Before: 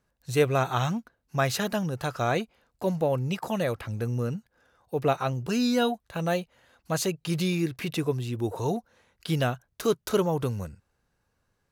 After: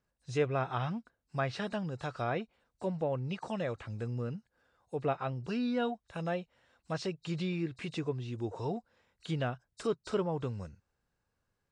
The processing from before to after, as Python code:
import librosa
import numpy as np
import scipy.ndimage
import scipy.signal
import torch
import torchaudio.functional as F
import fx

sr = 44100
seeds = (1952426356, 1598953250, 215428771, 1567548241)

y = fx.freq_compress(x, sr, knee_hz=3700.0, ratio=1.5)
y = fx.env_lowpass_down(y, sr, base_hz=2900.0, full_db=-21.5)
y = F.gain(torch.from_numpy(y), -7.5).numpy()